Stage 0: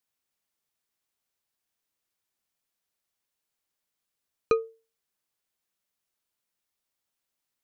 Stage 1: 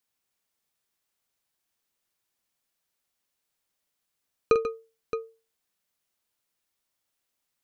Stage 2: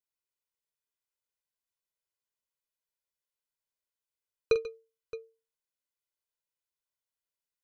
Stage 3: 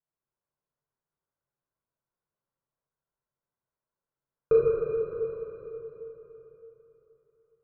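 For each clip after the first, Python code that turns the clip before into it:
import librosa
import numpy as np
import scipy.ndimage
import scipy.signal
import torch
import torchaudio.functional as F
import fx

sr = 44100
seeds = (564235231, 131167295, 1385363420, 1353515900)

y1 = fx.echo_multitap(x, sr, ms=(46, 139, 143, 620), db=(-9.5, -12.5, -18.0, -10.0))
y1 = F.gain(torch.from_numpy(y1), 2.0).numpy()
y2 = fx.dynamic_eq(y1, sr, hz=4100.0, q=1.1, threshold_db=-51.0, ratio=4.0, max_db=7)
y2 = y2 + 0.83 * np.pad(y2, (int(2.0 * sr / 1000.0), 0))[:len(y2)]
y2 = fx.upward_expand(y2, sr, threshold_db=-30.0, expansion=1.5)
y2 = F.gain(torch.from_numpy(y2), -7.5).numpy()
y3 = scipy.signal.sosfilt(scipy.signal.butter(4, 1400.0, 'lowpass', fs=sr, output='sos'), y2)
y3 = fx.peak_eq(y3, sr, hz=140.0, db=11.0, octaves=0.36)
y3 = fx.rev_plate(y3, sr, seeds[0], rt60_s=3.7, hf_ratio=0.8, predelay_ms=0, drr_db=-8.0)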